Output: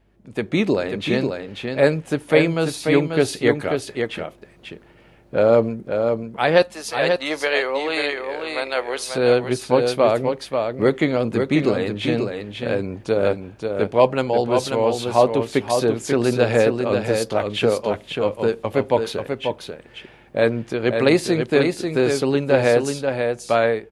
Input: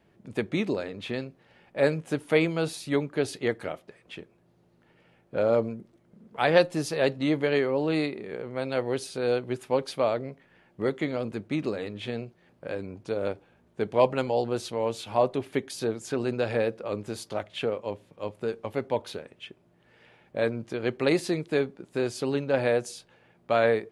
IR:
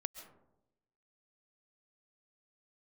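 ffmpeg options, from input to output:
-filter_complex "[0:a]asettb=1/sr,asplit=3[a][b][c];[a]atrim=end=6.624[d];[b]atrim=start=6.62:end=9.08,asetpts=PTS-STARTPTS,afade=t=in:d=0.004:c=qsin,afade=t=out:st=2.456:d=0.004:c=qsin,highpass=720[e];[c]atrim=start=9.076[f];[d][e]acrossfade=d=0.004:c1=hsin:c2=qsin[g];[g][f]acrossfade=d=0.004:c1=qsin:c2=hsin,dynaudnorm=f=100:g=9:m=11.5dB,aeval=exprs='val(0)+0.001*(sin(2*PI*50*n/s)+sin(2*PI*2*50*n/s)/2+sin(2*PI*3*50*n/s)/3+sin(2*PI*4*50*n/s)/4+sin(2*PI*5*50*n/s)/5)':c=same,aecho=1:1:539:0.531,volume=-1dB"

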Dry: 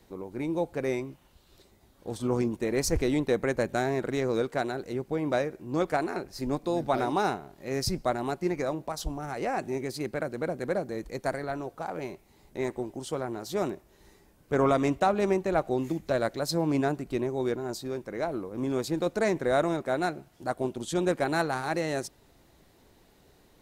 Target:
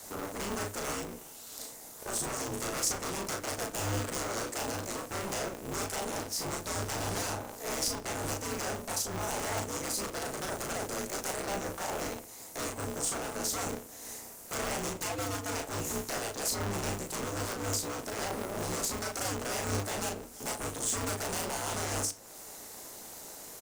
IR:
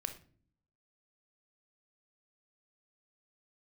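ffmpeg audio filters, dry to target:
-filter_complex "[0:a]highpass=330,acrossover=split=420|2100[a][b][c];[a]acompressor=threshold=-42dB:ratio=4[d];[b]acompressor=threshold=-43dB:ratio=4[e];[c]acompressor=threshold=-52dB:ratio=4[f];[d][e][f]amix=inputs=3:normalize=0,aeval=exprs='0.0112*(abs(mod(val(0)/0.0112+3,4)-2)-1)':c=same,alimiter=level_in=18.5dB:limit=-24dB:level=0:latency=1:release=460,volume=-18.5dB,highshelf=f=4.9k:t=q:w=1.5:g=11,asplit=2[g][h];[h]adelay=36,volume=-3dB[i];[g][i]amix=inputs=2:normalize=0,asplit=2[j][k];[1:a]atrim=start_sample=2205,asetrate=52920,aresample=44100[l];[k][l]afir=irnorm=-1:irlink=0,volume=4.5dB[m];[j][m]amix=inputs=2:normalize=0,aeval=exprs='val(0)*sgn(sin(2*PI*100*n/s))':c=same,volume=4dB"

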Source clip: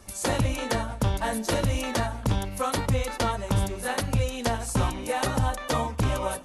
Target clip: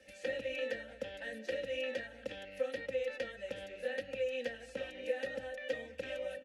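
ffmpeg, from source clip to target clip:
-filter_complex "[0:a]acrossover=split=280|4300[a][b][c];[a]acompressor=threshold=-36dB:ratio=4[d];[b]acompressor=threshold=-34dB:ratio=4[e];[c]acompressor=threshold=-50dB:ratio=4[f];[d][e][f]amix=inputs=3:normalize=0,asplit=3[g][h][i];[g]bandpass=f=530:t=q:w=8,volume=0dB[j];[h]bandpass=f=1.84k:t=q:w=8,volume=-6dB[k];[i]bandpass=f=2.48k:t=q:w=8,volume=-9dB[l];[j][k][l]amix=inputs=3:normalize=0,equalizer=f=600:w=0.42:g=-11.5,aecho=1:1:3.8:0.55,volume=11.5dB"

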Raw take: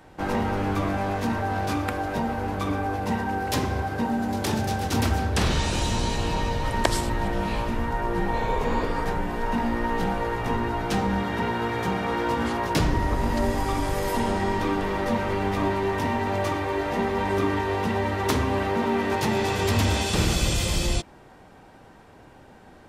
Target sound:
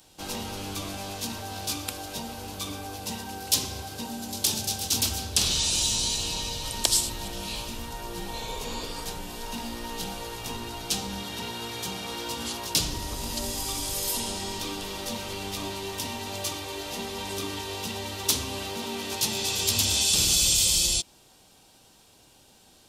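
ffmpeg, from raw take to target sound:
-filter_complex "[0:a]aexciter=amount=8.8:drive=5.2:freq=2.8k,asettb=1/sr,asplit=3[a][b][c];[a]atrim=end=10.384[d];[b]atrim=start=10.38:end=10.83,asetpts=PTS-STARTPTS,afade=t=in:d=0.004:c=qsin,afade=t=out:st=0.446:d=0.004:c=qsin,aeval=exprs='0.282*(cos(1*acos(clip(val(0)/0.282,-1,1)))-cos(1*PI/2))+0.00794*(cos(6*acos(clip(val(0)/0.282,-1,1)))-cos(6*PI/2))':c=same[e];[c]atrim=start=10.826[f];[d][e]acrossfade=d=0.004:c1=hsin:c2=qsin[g];[g][f]acrossfade=d=0.004:c1=qsin:c2=hsin,volume=-11dB"

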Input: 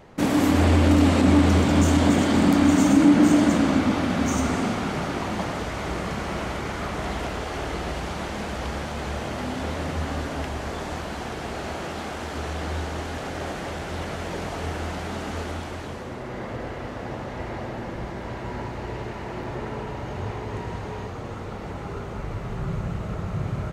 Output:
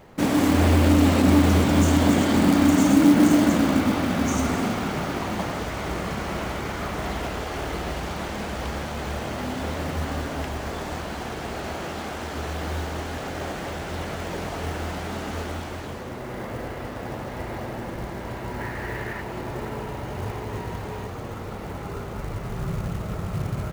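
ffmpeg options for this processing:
-filter_complex "[0:a]asettb=1/sr,asplit=3[a][b][c];[a]atrim=end=18.604[d];[b]atrim=start=18.6:end=19.21,asetpts=PTS-STARTPTS,afade=t=in:d=0.004:c=qsin,afade=t=out:st=0.606:d=0.004:c=qsin,equalizer=f=1.8k:w=3:g=12[e];[c]atrim=start=19.206[f];[d][e]acrossfade=d=0.004:c1=hsin:c2=qsin[g];[g][f]acrossfade=d=0.004:c1=qsin:c2=hsin,acrusher=bits=5:mode=log:mix=0:aa=0.000001"

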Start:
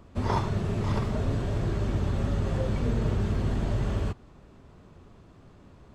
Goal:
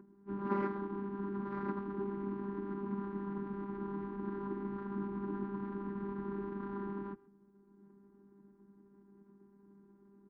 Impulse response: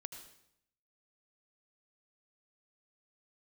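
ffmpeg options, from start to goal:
-filter_complex "[0:a]lowshelf=f=470:g=-5.5,acompressor=mode=upward:threshold=-48dB:ratio=2.5,afftfilt=real='hypot(re,im)*cos(PI*b)':imag='0':win_size=512:overlap=0.75,adynamicsmooth=sensitivity=6.5:basefreq=770,asplit=3[a][b][c];[a]bandpass=f=530:t=q:w=8,volume=0dB[d];[b]bandpass=f=1.84k:t=q:w=8,volume=-6dB[e];[c]bandpass=f=2.48k:t=q:w=8,volume=-9dB[f];[d][e][f]amix=inputs=3:normalize=0,aecho=1:1:77:0.075,asetrate=25442,aresample=44100,volume=17.5dB"

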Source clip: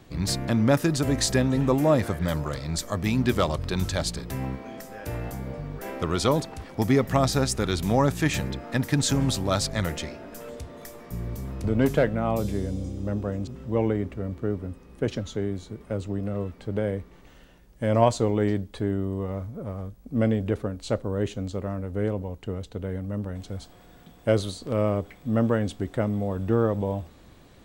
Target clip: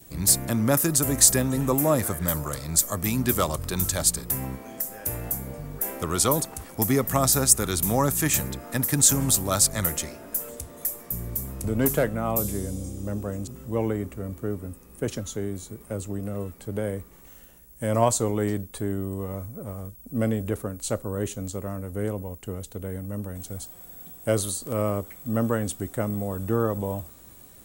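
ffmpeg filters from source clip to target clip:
-filter_complex "[0:a]adynamicequalizer=threshold=0.00891:dfrequency=1200:dqfactor=2.6:tfrequency=1200:tqfactor=2.6:attack=5:release=100:ratio=0.375:range=2:mode=boostabove:tftype=bell,acrossover=split=420|7000[a][b][c];[c]crystalizer=i=8:c=0[d];[a][b][d]amix=inputs=3:normalize=0,volume=-2dB"

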